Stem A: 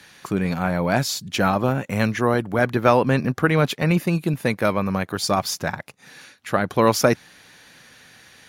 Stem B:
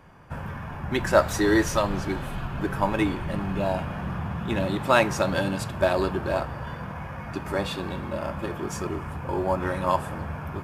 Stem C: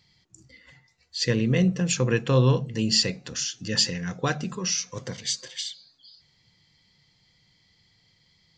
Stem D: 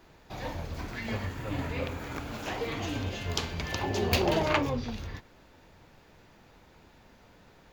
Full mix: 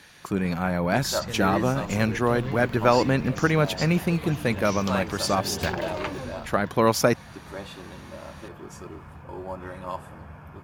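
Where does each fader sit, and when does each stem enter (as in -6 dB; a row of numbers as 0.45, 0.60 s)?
-3.0, -10.0, -13.5, -6.0 dB; 0.00, 0.00, 0.00, 1.50 s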